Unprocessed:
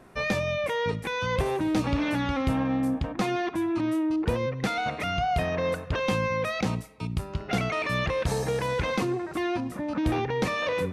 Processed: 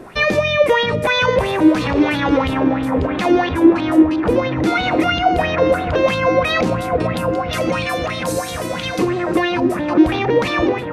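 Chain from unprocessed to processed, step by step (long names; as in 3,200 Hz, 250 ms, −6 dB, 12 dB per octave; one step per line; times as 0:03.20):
fade-out on the ending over 0.68 s
0:07.13–0:08.99: first difference
on a send: delay with a low-pass on its return 530 ms, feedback 78%, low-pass 1,500 Hz, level −9 dB
on the sum: boost into a limiter +23 dB
auto-filter bell 3 Hz 320–3,800 Hz +13 dB
level −12.5 dB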